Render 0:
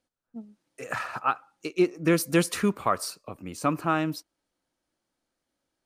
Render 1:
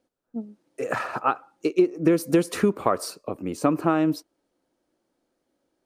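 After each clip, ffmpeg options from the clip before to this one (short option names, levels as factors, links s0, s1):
-af "equalizer=f=390:t=o:w=2.2:g=12,acompressor=threshold=0.158:ratio=6"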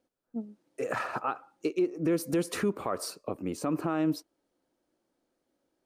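-af "alimiter=limit=0.168:level=0:latency=1:release=57,volume=0.668"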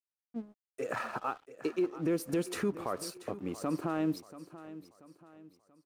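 -af "aeval=exprs='sgn(val(0))*max(abs(val(0))-0.00237,0)':c=same,aecho=1:1:684|1368|2052|2736:0.168|0.0672|0.0269|0.0107,volume=0.708"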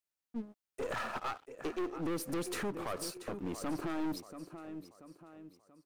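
-af "aeval=exprs='(tanh(63.1*val(0)+0.4)-tanh(0.4))/63.1':c=same,volume=1.5"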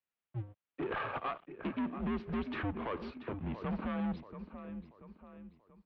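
-af "highpass=f=160:t=q:w=0.5412,highpass=f=160:t=q:w=1.307,lowpass=f=3400:t=q:w=0.5176,lowpass=f=3400:t=q:w=0.7071,lowpass=f=3400:t=q:w=1.932,afreqshift=-110,volume=1.12"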